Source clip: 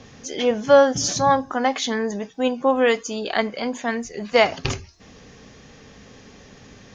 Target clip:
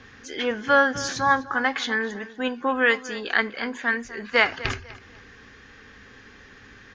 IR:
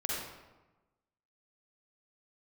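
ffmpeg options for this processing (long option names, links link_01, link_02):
-filter_complex "[0:a]equalizer=frequency=160:width_type=o:width=0.67:gain=-11,equalizer=frequency=630:width_type=o:width=0.67:gain=-10,equalizer=frequency=1600:width_type=o:width=0.67:gain=11,equalizer=frequency=6300:width_type=o:width=0.67:gain=-8,asplit=2[link_01][link_02];[link_02]adelay=248,lowpass=frequency=4200:poles=1,volume=-16dB,asplit=2[link_03][link_04];[link_04]adelay=248,lowpass=frequency=4200:poles=1,volume=0.31,asplit=2[link_05][link_06];[link_06]adelay=248,lowpass=frequency=4200:poles=1,volume=0.31[link_07];[link_01][link_03][link_05][link_07]amix=inputs=4:normalize=0,volume=-2dB"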